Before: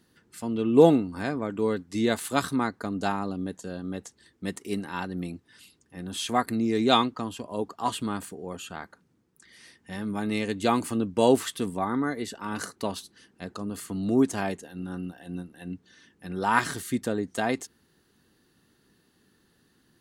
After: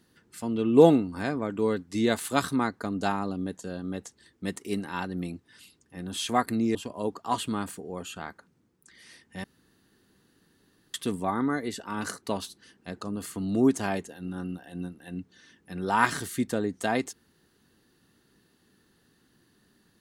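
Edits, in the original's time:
6.75–7.29 cut
9.98–11.48 room tone

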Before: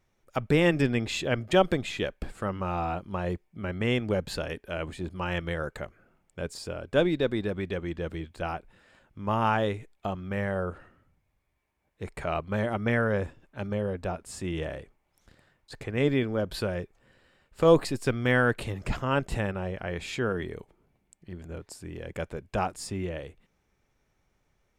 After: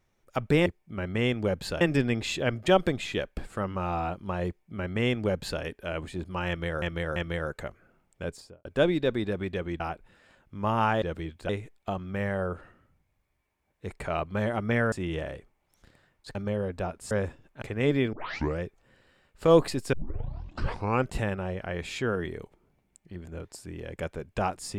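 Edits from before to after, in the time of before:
3.32–4.47 copy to 0.66
5.33–5.67 loop, 3 plays
6.41–6.82 studio fade out
7.97–8.44 move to 9.66
13.09–13.6 swap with 14.36–15.79
16.3 tape start 0.47 s
18.1 tape start 1.17 s

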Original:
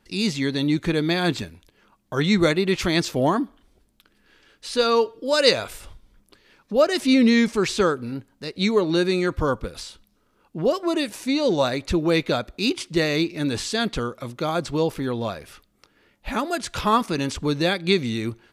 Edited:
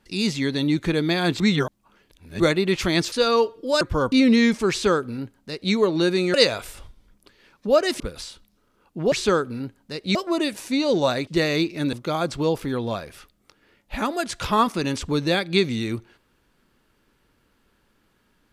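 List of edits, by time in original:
1.4–2.4 reverse
3.12–4.71 cut
5.4–7.06 swap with 9.28–9.59
7.64–8.67 copy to 10.71
11.83–12.87 cut
13.53–14.27 cut

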